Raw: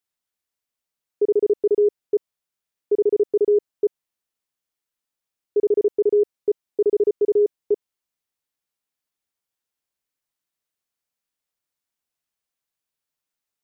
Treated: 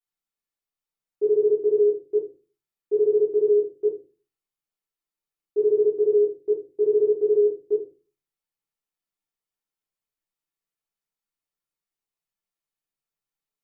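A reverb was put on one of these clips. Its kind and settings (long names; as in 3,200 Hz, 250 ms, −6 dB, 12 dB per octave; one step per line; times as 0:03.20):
rectangular room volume 130 cubic metres, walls furnished, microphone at 3.3 metres
level −13.5 dB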